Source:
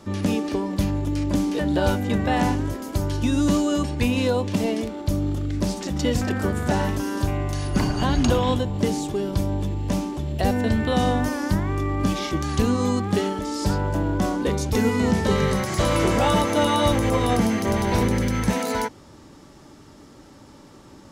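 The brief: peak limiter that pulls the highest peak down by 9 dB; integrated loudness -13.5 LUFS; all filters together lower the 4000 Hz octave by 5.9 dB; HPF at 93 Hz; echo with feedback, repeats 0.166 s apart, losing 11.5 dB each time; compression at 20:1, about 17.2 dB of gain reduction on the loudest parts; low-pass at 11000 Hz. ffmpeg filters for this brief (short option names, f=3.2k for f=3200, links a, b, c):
-af "highpass=93,lowpass=11k,equalizer=f=4k:t=o:g=-8,acompressor=threshold=-34dB:ratio=20,alimiter=level_in=8.5dB:limit=-24dB:level=0:latency=1,volume=-8.5dB,aecho=1:1:166|332|498:0.266|0.0718|0.0194,volume=27.5dB"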